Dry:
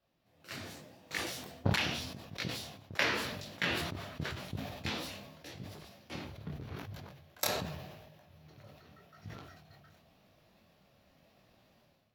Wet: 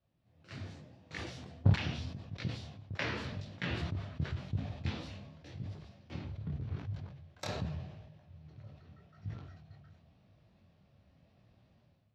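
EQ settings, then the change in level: LPF 7000 Hz 12 dB/oct; air absorption 52 m; bell 90 Hz +14.5 dB 2.3 oct; -6.5 dB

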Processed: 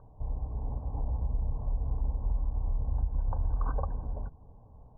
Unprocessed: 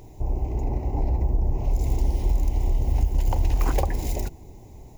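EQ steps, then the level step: dynamic EQ 650 Hz, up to -4 dB, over -46 dBFS, Q 1.2; rippled Chebyshev low-pass 1600 Hz, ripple 9 dB; fixed phaser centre 870 Hz, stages 4; +1.0 dB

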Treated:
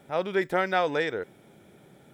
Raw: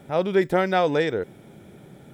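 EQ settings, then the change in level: dynamic EQ 1600 Hz, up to +4 dB, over -37 dBFS, Q 0.92; low shelf 290 Hz -7.5 dB; -4.0 dB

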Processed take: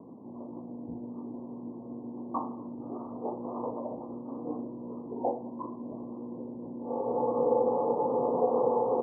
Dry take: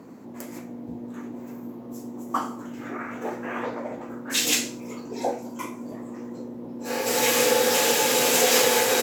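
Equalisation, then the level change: steep low-pass 1100 Hz 96 dB/oct; -3.5 dB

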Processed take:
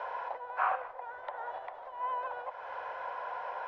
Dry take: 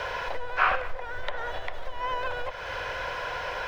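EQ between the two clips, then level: band-pass 840 Hz, Q 2.7; 0.0 dB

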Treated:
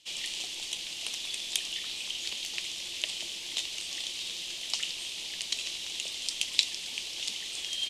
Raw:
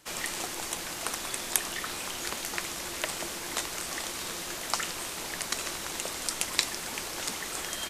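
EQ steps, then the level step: air absorption 63 m; resonant high shelf 2100 Hz +13.5 dB, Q 3; -13.0 dB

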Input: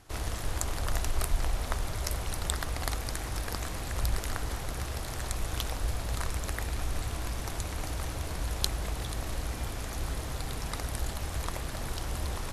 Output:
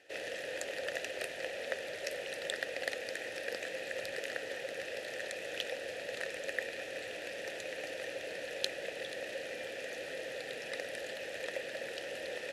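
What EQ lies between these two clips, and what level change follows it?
vowel filter e; HPF 150 Hz 12 dB/oct; high shelf 2400 Hz +9 dB; +9.5 dB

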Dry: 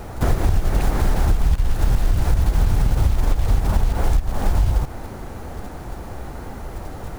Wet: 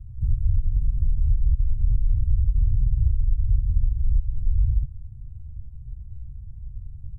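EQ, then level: inverse Chebyshev band-stop 250–5000 Hz, stop band 40 dB; tape spacing loss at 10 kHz 34 dB; -2.5 dB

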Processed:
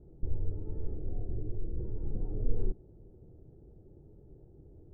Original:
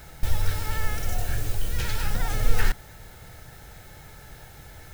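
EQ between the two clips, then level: ladder low-pass 410 Hz, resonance 60%; +2.0 dB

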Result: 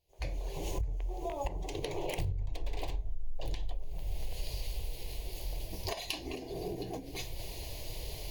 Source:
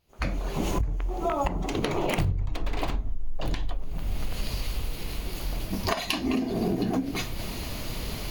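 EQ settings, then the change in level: fixed phaser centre 550 Hz, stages 4; dynamic EQ 650 Hz, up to -4 dB, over -47 dBFS, Q 4.3; -6.0 dB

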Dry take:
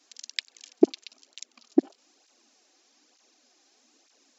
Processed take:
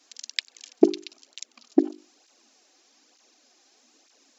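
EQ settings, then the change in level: notches 50/100/150/200/250/300/350/400 Hz; +3.0 dB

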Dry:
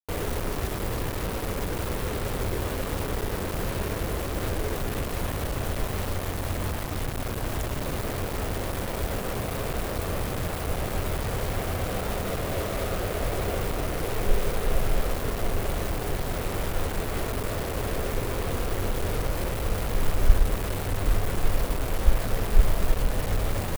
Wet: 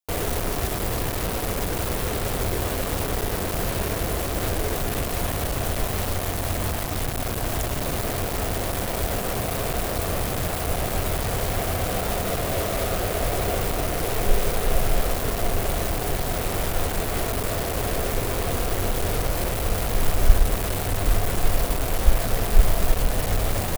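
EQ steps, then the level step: bell 700 Hz +5.5 dB 0.22 oct; high shelf 3600 Hz +6 dB; +2.5 dB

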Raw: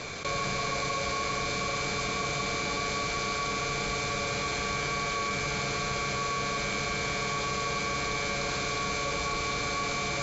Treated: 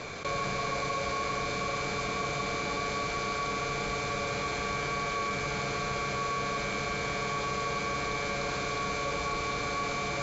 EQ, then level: low shelf 320 Hz -3.5 dB; high shelf 2400 Hz -8 dB; +1.5 dB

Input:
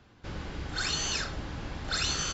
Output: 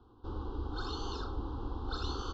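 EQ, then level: Butterworth band-stop 2000 Hz, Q 0.87; LPF 3200 Hz 24 dB/oct; fixed phaser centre 620 Hz, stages 6; +2.5 dB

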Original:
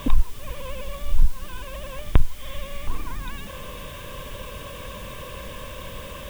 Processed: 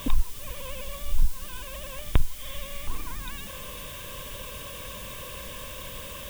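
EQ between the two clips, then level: high shelf 3200 Hz +10 dB; -5.0 dB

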